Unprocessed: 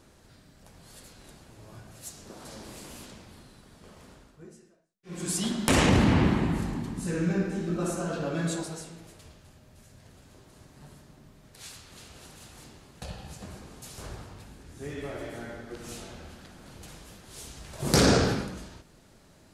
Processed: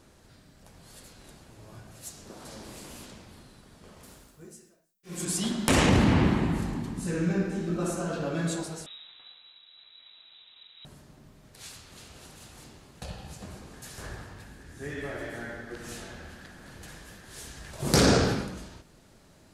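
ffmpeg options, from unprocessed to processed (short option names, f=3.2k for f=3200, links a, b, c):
-filter_complex "[0:a]asettb=1/sr,asplit=3[a][b][c];[a]atrim=end=4.034[d];[b]atrim=start=4.03:end=5.25,asetpts=PTS-STARTPTS,afade=t=in:d=0.004:c=qsin,afade=t=out:st=1.216:d=0.004:c=qsin,aemphasis=mode=production:type=50fm[e];[c]atrim=start=5.246[f];[d][e]acrossfade=d=0.004:c1=hsin:c2=qsin[g];[g][f]acrossfade=d=0.004:c1=qsin:c2=hsin,asettb=1/sr,asplit=3[h][i][j];[h]atrim=end=8.864[k];[i]atrim=start=8.86:end=10.85,asetpts=PTS-STARTPTS,afade=t=in:d=0.004:c=qsin,afade=t=out:st=1.986:d=0.004:c=qsin,lowpass=f=3.4k:t=q:w=0.5098,lowpass=f=3.4k:t=q:w=0.6013,lowpass=f=3.4k:t=q:w=0.9,lowpass=f=3.4k:t=q:w=2.563,afreqshift=-4000[l];[j]atrim=start=10.846[m];[k][l]acrossfade=d=0.004:c1=hsin:c2=qsin[n];[n][m]acrossfade=d=0.004:c1=qsin:c2=hsin,asettb=1/sr,asplit=3[o][p][q];[o]atrim=end=13.734[r];[p]atrim=start=13.73:end=17.71,asetpts=PTS-STARTPTS,afade=t=in:d=0.004:c=qsin,afade=t=out:st=3.976:d=0.004:c=qsin,equalizer=f=1.7k:t=o:w=0.3:g=10.5[s];[q]atrim=start=17.706[t];[r][s]acrossfade=d=0.004:c1=hsin:c2=qsin[u];[u][t]acrossfade=d=0.004:c1=qsin:c2=hsin"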